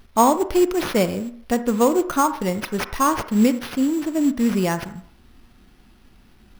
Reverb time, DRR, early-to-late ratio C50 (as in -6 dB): 0.60 s, 11.0 dB, 13.0 dB